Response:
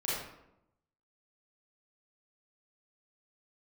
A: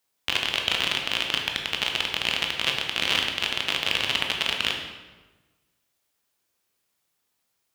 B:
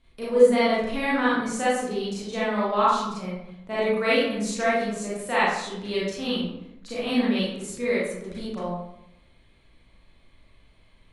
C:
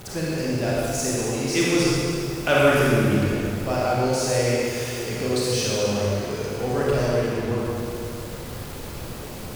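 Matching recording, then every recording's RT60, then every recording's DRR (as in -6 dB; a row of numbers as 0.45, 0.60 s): B; 1.3, 0.85, 2.6 s; 1.5, -9.0, -7.0 dB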